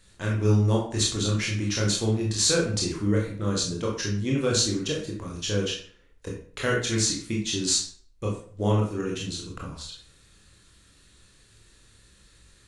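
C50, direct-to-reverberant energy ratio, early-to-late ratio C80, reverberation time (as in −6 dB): 4.5 dB, −2.0 dB, 9.0 dB, 0.50 s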